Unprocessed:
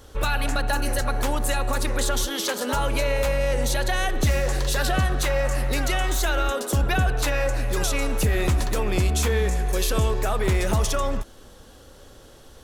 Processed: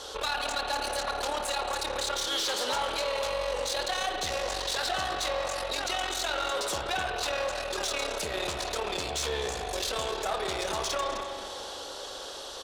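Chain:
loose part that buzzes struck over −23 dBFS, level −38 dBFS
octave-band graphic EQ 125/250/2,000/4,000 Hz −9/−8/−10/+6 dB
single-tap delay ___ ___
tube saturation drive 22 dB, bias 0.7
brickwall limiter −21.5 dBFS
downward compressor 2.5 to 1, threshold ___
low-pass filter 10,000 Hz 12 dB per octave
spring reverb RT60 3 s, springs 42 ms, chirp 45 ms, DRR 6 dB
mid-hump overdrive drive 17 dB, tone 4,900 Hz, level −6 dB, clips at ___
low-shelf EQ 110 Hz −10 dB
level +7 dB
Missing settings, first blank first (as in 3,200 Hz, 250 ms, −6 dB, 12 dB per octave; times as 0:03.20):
256 ms, −18.5 dB, −42 dBFS, −27 dBFS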